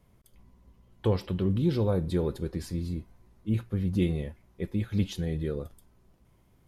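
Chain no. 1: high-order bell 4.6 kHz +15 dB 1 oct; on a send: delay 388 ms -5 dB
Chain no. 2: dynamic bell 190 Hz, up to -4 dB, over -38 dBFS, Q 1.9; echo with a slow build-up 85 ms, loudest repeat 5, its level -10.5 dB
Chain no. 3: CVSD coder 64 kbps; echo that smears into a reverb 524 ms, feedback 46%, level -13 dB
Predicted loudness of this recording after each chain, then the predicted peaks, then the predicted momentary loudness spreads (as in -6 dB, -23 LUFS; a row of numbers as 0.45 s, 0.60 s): -29.0 LUFS, -30.0 LUFS, -30.5 LUFS; -13.5 dBFS, -14.0 dBFS, -15.0 dBFS; 10 LU, 9 LU, 17 LU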